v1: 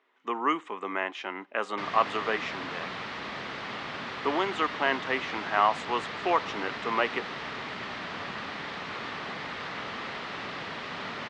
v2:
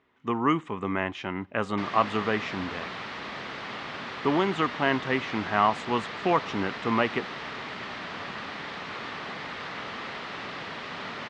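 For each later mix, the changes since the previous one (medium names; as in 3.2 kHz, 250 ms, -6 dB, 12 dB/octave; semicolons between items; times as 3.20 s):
speech: remove Bessel high-pass 440 Hz, order 4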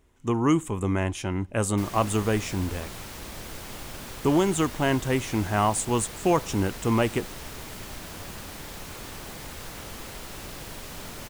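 background -5.0 dB; master: remove cabinet simulation 210–4000 Hz, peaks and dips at 330 Hz -5 dB, 530 Hz -3 dB, 1.2 kHz +5 dB, 1.9 kHz +5 dB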